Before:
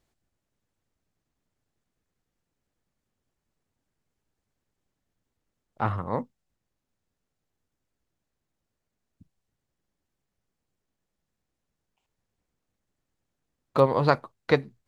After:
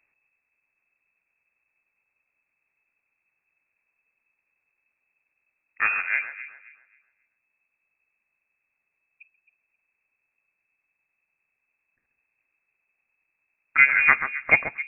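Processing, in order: inverted band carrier 2600 Hz; echo with dull and thin repeats by turns 0.133 s, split 1700 Hz, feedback 51%, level -7.5 dB; gain +3 dB

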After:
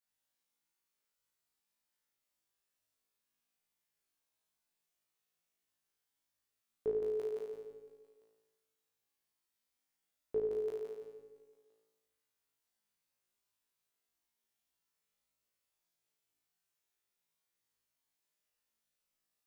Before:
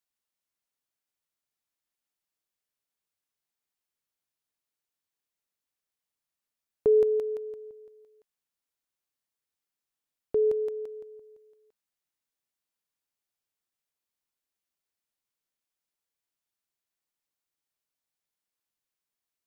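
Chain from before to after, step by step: limiter -25 dBFS, peak gain reduction 9 dB; on a send: flutter echo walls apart 3.1 m, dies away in 1.1 s; on the sum: gain -5 dB

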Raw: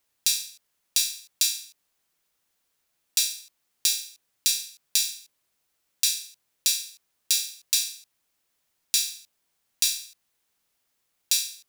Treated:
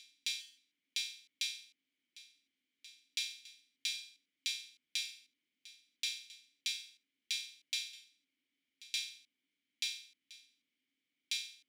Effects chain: vowel filter i; reverse echo 1.007 s -18.5 dB; gain +6.5 dB

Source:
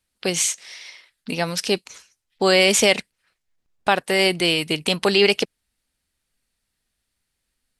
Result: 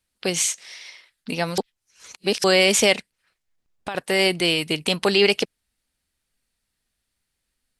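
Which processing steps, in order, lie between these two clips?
1.58–2.44 reverse; 2.95–3.95 compressor 3:1, threshold -31 dBFS, peak gain reduction 14 dB; gain -1 dB

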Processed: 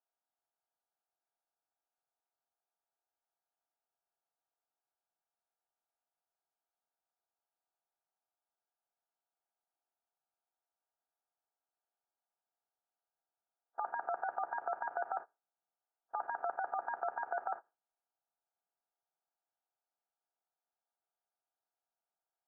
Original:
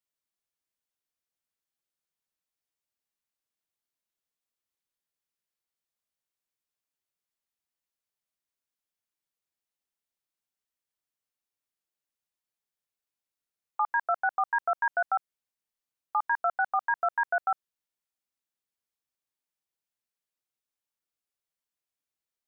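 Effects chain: per-bin compression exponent 0.4; spectral noise reduction 27 dB; gate with hold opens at -44 dBFS; negative-ratio compressor -32 dBFS, ratio -1; band-pass 350 Hz, Q 1.8; gain +8.5 dB

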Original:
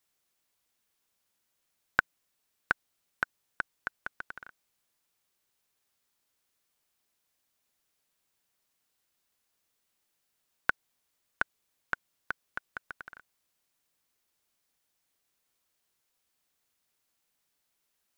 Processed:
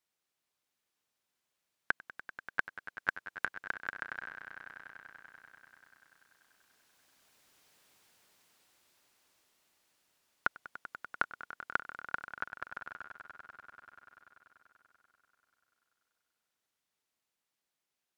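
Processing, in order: Doppler pass-by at 7.71, 15 m/s, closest 13 m; low shelf 61 Hz -10.5 dB; limiter -26 dBFS, peak gain reduction 8 dB; high shelf 7900 Hz -7.5 dB; swelling echo 97 ms, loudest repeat 5, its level -16 dB; gain +14.5 dB

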